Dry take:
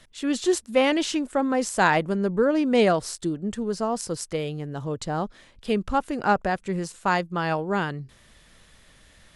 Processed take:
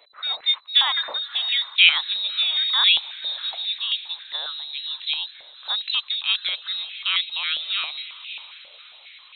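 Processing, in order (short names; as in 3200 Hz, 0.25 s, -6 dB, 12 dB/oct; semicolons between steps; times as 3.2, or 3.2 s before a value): inverted band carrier 4000 Hz; diffused feedback echo 0.598 s, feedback 50%, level -15 dB; stepped high-pass 7.4 Hz 570–2500 Hz; gain -3 dB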